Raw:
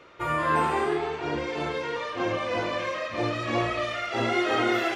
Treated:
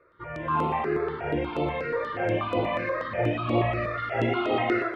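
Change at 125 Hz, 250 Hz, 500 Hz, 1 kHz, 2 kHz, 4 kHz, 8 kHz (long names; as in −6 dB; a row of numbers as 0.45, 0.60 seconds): +4.5 dB, +1.0 dB, +1.0 dB, −1.0 dB, −2.5 dB, −6.5 dB, below −15 dB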